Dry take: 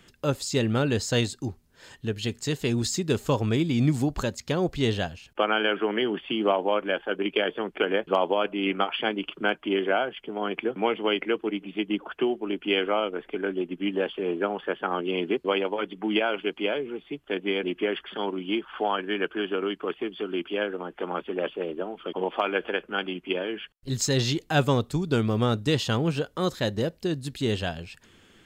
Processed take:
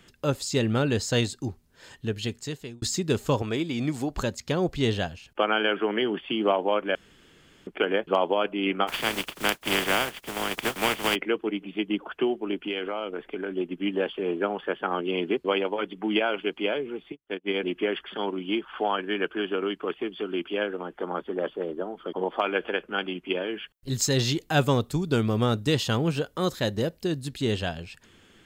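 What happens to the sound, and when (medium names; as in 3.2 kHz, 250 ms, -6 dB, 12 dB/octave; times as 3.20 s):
2.19–2.82 s: fade out
3.42–4.14 s: tone controls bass -10 dB, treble -2 dB
6.95–7.67 s: room tone
8.87–11.14 s: spectral contrast reduction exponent 0.33
12.65–13.52 s: compression 4:1, threshold -27 dBFS
17.12–17.54 s: upward expansion 2.5:1, over -43 dBFS
20.96–22.40 s: peaking EQ 2.6 kHz -11.5 dB 0.53 oct
23.52–27.25 s: treble shelf 12 kHz +9 dB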